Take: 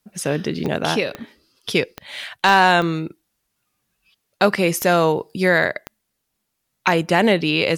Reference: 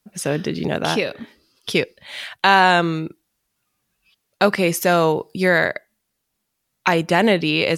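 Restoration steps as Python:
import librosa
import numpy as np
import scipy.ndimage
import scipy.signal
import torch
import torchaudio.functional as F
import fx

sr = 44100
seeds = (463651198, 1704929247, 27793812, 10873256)

y = fx.fix_declip(x, sr, threshold_db=-5.0)
y = fx.fix_declick_ar(y, sr, threshold=10.0)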